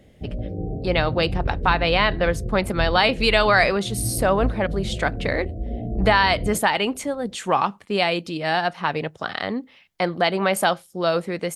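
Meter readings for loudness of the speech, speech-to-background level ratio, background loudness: −22.0 LKFS, 8.0 dB, −30.0 LKFS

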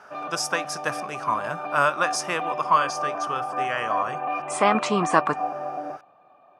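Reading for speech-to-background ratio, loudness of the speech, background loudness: 5.0 dB, −25.5 LKFS, −30.5 LKFS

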